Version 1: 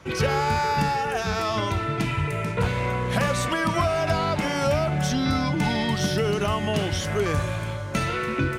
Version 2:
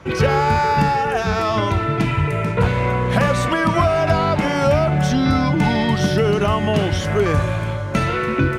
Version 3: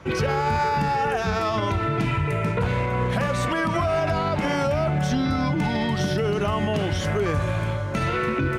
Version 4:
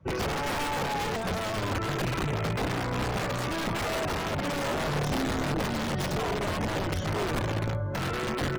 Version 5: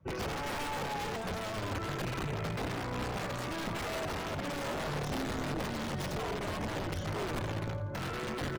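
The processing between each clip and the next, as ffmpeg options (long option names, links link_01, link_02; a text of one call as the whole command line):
ffmpeg -i in.wav -af "highshelf=frequency=3400:gain=-9,volume=7dB" out.wav
ffmpeg -i in.wav -af "alimiter=limit=-12.5dB:level=0:latency=1:release=71,volume=-2.5dB" out.wav
ffmpeg -i in.wav -af "aeval=exprs='(mod(7.94*val(0)+1,2)-1)/7.94':channel_layout=same,afftdn=noise_reduction=16:noise_floor=-36,tiltshelf=frequency=900:gain=3.5,volume=-6dB" out.wav
ffmpeg -i in.wav -af "aecho=1:1:85|170|255|340:0.211|0.0824|0.0321|0.0125,volume=-6.5dB" out.wav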